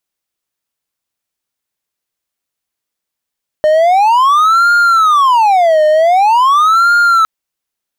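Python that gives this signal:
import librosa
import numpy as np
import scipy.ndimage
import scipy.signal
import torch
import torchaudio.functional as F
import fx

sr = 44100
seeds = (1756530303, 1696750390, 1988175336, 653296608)

y = fx.siren(sr, length_s=3.61, kind='wail', low_hz=612.0, high_hz=1410.0, per_s=0.45, wave='triangle', level_db=-4.0)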